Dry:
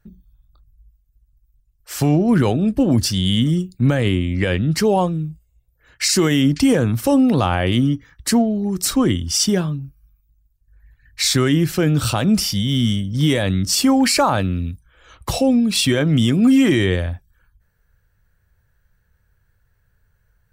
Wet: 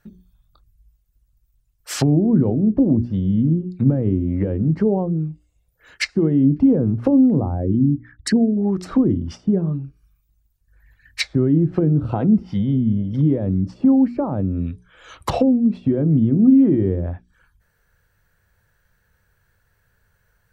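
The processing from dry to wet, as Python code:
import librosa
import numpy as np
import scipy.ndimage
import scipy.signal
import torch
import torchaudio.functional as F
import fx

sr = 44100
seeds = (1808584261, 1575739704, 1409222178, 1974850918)

y = fx.envelope_sharpen(x, sr, power=2.0, at=(7.4, 8.57))
y = fx.notch_comb(y, sr, f0_hz=580.0, at=(12.11, 12.6))
y = fx.env_lowpass_down(y, sr, base_hz=320.0, full_db=-14.5)
y = fx.low_shelf(y, sr, hz=130.0, db=-10.0)
y = fx.hum_notches(y, sr, base_hz=60, count=7)
y = F.gain(torch.from_numpy(y), 5.0).numpy()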